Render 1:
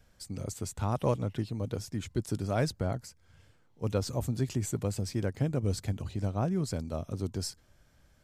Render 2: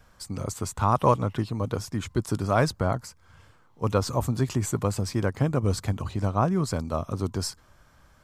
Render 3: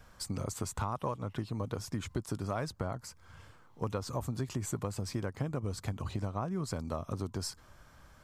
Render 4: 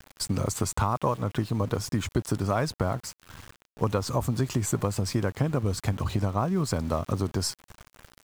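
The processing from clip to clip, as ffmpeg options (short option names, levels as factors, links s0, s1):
-af "equalizer=f=1100:w=1.8:g=11.5,volume=1.78"
-af "acompressor=threshold=0.0251:ratio=6"
-af "aeval=exprs='val(0)*gte(abs(val(0)),0.00299)':c=same,volume=2.82"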